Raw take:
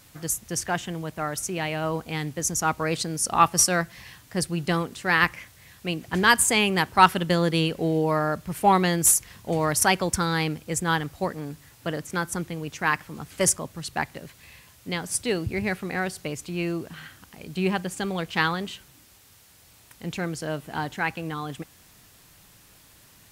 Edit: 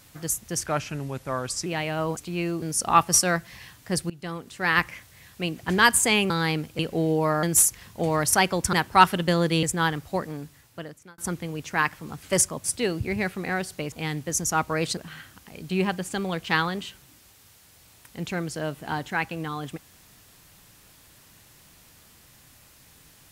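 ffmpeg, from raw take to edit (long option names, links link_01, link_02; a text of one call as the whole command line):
ffmpeg -i in.wav -filter_complex "[0:a]asplit=15[link_01][link_02][link_03][link_04][link_05][link_06][link_07][link_08][link_09][link_10][link_11][link_12][link_13][link_14][link_15];[link_01]atrim=end=0.664[link_16];[link_02]atrim=start=0.66:end=1.51,asetpts=PTS-STARTPTS,asetrate=37485,aresample=44100[link_17];[link_03]atrim=start=1.506:end=2.022[link_18];[link_04]atrim=start=16.378:end=16.832[link_19];[link_05]atrim=start=3.068:end=4.55,asetpts=PTS-STARTPTS,afade=type=out:start_time=1.478:duration=0.004:curve=hsin:silence=0.112202[link_20];[link_06]atrim=start=4.55:end=6.752,asetpts=PTS-STARTPTS,afade=type=in:duration=0.77:silence=0.112202[link_21];[link_07]atrim=start=10.218:end=10.712[link_22];[link_08]atrim=start=7.648:end=8.292[link_23];[link_09]atrim=start=8.918:end=10.222[link_24];[link_10]atrim=start=6.748:end=7.652[link_25];[link_11]atrim=start=10.708:end=12.26,asetpts=PTS-STARTPTS,afade=type=out:start_time=0.642:duration=0.91[link_26];[link_12]atrim=start=12.26:end=13.722,asetpts=PTS-STARTPTS,afade=type=in:duration=0.004:curve=hsin[link_27];[link_13]atrim=start=15.098:end=16.382[link_28];[link_14]atrim=start=2.018:end=3.072[link_29];[link_15]atrim=start=16.828[link_30];[link_16][link_17]acrossfade=duration=0.004:curve1=hsin:curve2=hsin[link_31];[link_31][link_18]acrossfade=duration=0.004:curve1=hsin:curve2=hsin[link_32];[link_32][link_19]acrossfade=duration=0.004:curve1=hsin:curve2=hsin[link_33];[link_20][link_21]concat=n=2:v=0:a=1[link_34];[link_33][link_34]acrossfade=duration=0.004:curve1=hsin:curve2=hsin[link_35];[link_35][link_22]acrossfade=duration=0.004:curve1=hsin:curve2=hsin[link_36];[link_36][link_23]acrossfade=duration=0.004:curve1=hsin:curve2=hsin[link_37];[link_37][link_24]acrossfade=duration=0.004:curve1=hsin:curve2=hsin[link_38];[link_38][link_25]acrossfade=duration=0.004:curve1=hsin:curve2=hsin[link_39];[link_26][link_27]concat=n=2:v=0:a=1[link_40];[link_39][link_40]acrossfade=duration=0.004:curve1=hsin:curve2=hsin[link_41];[link_41][link_28]acrossfade=duration=0.004:curve1=hsin:curve2=hsin[link_42];[link_42][link_29]acrossfade=duration=0.004:curve1=hsin:curve2=hsin[link_43];[link_43][link_30]acrossfade=duration=0.004:curve1=hsin:curve2=hsin" out.wav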